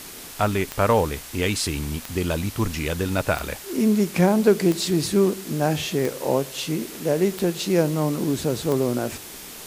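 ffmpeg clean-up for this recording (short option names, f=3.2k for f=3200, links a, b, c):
-af "adeclick=t=4,afftdn=nr=28:nf=-39"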